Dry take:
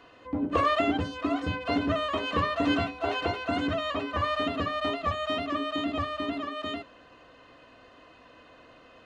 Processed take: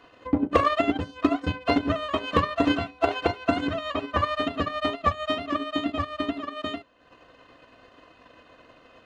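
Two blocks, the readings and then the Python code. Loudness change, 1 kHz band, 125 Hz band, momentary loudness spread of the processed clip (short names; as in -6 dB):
+2.5 dB, +2.5 dB, +2.5 dB, 7 LU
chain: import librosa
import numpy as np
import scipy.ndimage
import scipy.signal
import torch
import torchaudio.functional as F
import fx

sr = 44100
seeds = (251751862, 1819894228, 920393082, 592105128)

y = fx.transient(x, sr, attack_db=10, sustain_db=-9)
y = np.clip(10.0 ** (10.0 / 20.0) * y, -1.0, 1.0) / 10.0 ** (10.0 / 20.0)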